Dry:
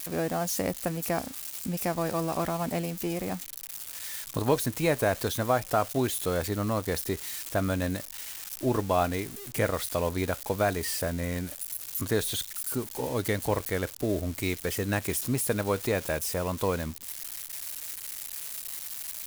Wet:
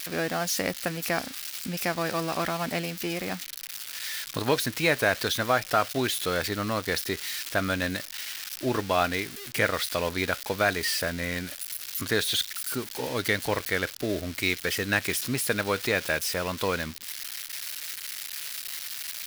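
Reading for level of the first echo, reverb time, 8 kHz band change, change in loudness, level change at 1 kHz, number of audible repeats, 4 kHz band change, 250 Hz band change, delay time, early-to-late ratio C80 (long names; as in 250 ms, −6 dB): no echo audible, no reverb audible, +1.0 dB, +2.0 dB, +1.5 dB, no echo audible, +8.0 dB, −1.0 dB, no echo audible, no reverb audible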